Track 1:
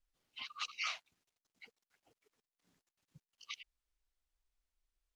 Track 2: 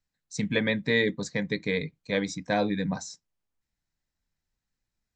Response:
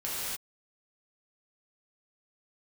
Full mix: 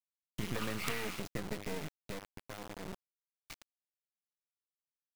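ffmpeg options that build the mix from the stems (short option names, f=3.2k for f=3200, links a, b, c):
-filter_complex "[0:a]volume=0.5dB,asplit=2[a][b];[b]volume=-3.5dB[c];[1:a]acompressor=threshold=-29dB:ratio=8,bandreject=f=101.6:t=h:w=4,bandreject=f=203.2:t=h:w=4,bandreject=f=304.8:t=h:w=4,bandreject=f=406.4:t=h:w=4,volume=-1.5dB,afade=t=out:st=1.99:d=0.23:silence=0.334965[d];[2:a]atrim=start_sample=2205[e];[c][e]afir=irnorm=-1:irlink=0[f];[a][d][f]amix=inputs=3:normalize=0,lowpass=2.2k,lowshelf=f=87:g=6.5,acrusher=bits=4:dc=4:mix=0:aa=0.000001"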